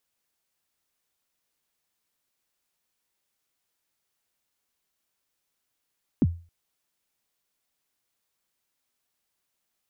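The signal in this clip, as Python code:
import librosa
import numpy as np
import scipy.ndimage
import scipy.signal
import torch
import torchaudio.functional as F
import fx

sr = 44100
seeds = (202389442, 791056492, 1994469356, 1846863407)

y = fx.drum_kick(sr, seeds[0], length_s=0.27, level_db=-13.5, start_hz=320.0, end_hz=85.0, sweep_ms=39.0, decay_s=0.35, click=False)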